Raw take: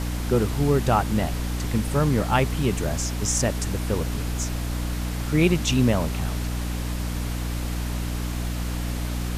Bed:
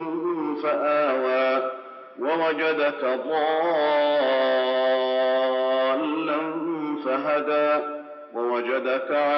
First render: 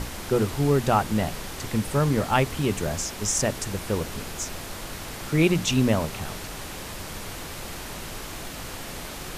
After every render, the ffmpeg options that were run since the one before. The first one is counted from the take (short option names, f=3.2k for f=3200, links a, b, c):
-af "bandreject=f=60:t=h:w=6,bandreject=f=120:t=h:w=6,bandreject=f=180:t=h:w=6,bandreject=f=240:t=h:w=6,bandreject=f=300:t=h:w=6"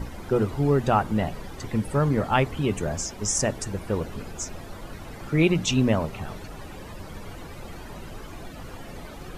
-af "afftdn=nr=14:nf=-37"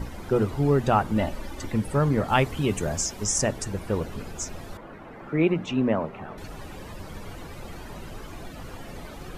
-filter_complex "[0:a]asettb=1/sr,asplit=3[a][b][c];[a]atrim=end=1.164[d];[b]atrim=start=1.16:end=1.72,asetpts=PTS-STARTPTS,afade=t=in:d=0.004:c=qsin,afade=t=out:st=0.556:d=0.004:c=qsin,aecho=1:1:3.4:0.59,atrim=end_sample=24696[e];[c]atrim=start=1.716[f];[d][e]acrossfade=d=0.004:c1=hsin:c2=qsin[g];[g][f]acrossfade=d=0.004:c1=qsin:c2=hsin,asettb=1/sr,asplit=3[h][i][j];[h]atrim=end=2.284[k];[i]atrim=start=2.28:end=3.24,asetpts=PTS-STARTPTS,afade=t=in:d=0.004:c=qsin,afade=t=out:st=0.956:d=0.004:c=qsin,highshelf=f=4.5k:g=5.5[l];[j]atrim=start=3.236[m];[k][l]acrossfade=d=0.004:c1=hsin:c2=qsin[n];[n][m]acrossfade=d=0.004:c1=qsin:c2=hsin,asettb=1/sr,asplit=3[o][p][q];[o]atrim=end=4.774[r];[p]atrim=start=4.77:end=6.38,asetpts=PTS-STARTPTS,afade=t=in:d=0.004:c=qsin,afade=t=out:st=1.606:d=0.004:c=qsin,acrossover=split=170 2400:gain=0.224 1 0.1[s][t][u];[s][t][u]amix=inputs=3:normalize=0[v];[q]atrim=start=6.376[w];[r][v]acrossfade=d=0.004:c1=hsin:c2=qsin[x];[x][w]acrossfade=d=0.004:c1=qsin:c2=hsin"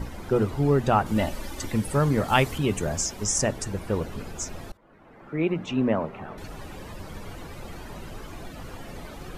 -filter_complex "[0:a]asettb=1/sr,asplit=3[a][b][c];[a]atrim=end=1.064[d];[b]atrim=start=1.06:end=2.58,asetpts=PTS-STARTPTS,afade=t=in:d=0.004:c=qsin,afade=t=out:st=1.516:d=0.004:c=qsin,highshelf=f=3.6k:g=8[e];[c]atrim=start=2.576[f];[d][e]acrossfade=d=0.004:c1=hsin:c2=qsin[g];[g][f]acrossfade=d=0.004:c1=qsin:c2=hsin,asplit=2[h][i];[h]atrim=end=4.72,asetpts=PTS-STARTPTS,afade=t=out:st=4.716:d=0.004:c=hsin:silence=0.0668344[j];[i]atrim=start=4.72,asetpts=PTS-STARTPTS,afade=t=in:d=1.11:silence=0.0668344[k];[j][k]concat=n=2:v=0:a=1"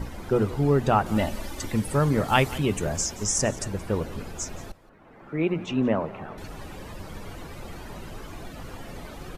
-af "aecho=1:1:175:0.112"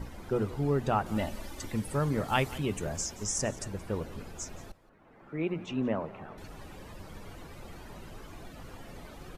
-af "volume=-7dB"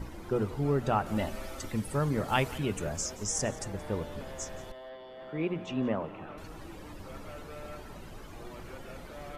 -filter_complex "[1:a]volume=-24.5dB[a];[0:a][a]amix=inputs=2:normalize=0"